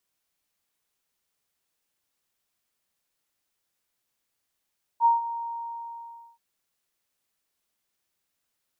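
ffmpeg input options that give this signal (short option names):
-f lavfi -i "aevalsrc='0.188*sin(2*PI*931*t)':d=1.38:s=44100,afade=t=in:d=0.053,afade=t=out:st=0.053:d=0.154:silence=0.2,afade=t=out:st=0.26:d=1.12"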